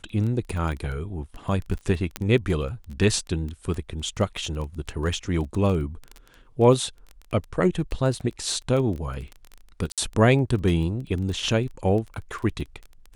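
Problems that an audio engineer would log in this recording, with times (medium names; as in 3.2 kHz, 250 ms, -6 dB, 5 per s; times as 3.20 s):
crackle 16 per s -29 dBFS
2.16 s: pop -11 dBFS
9.92–9.98 s: dropout 57 ms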